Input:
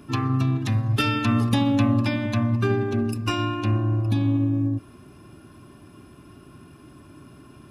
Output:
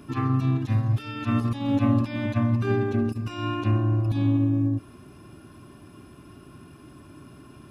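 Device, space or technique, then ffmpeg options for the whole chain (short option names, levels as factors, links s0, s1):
de-esser from a sidechain: -filter_complex "[0:a]asplit=2[s0][s1];[s1]highpass=f=4300:w=0.5412,highpass=f=4300:w=1.3066,apad=whole_len=339680[s2];[s0][s2]sidechaincompress=threshold=0.00251:ratio=8:attack=2.2:release=22"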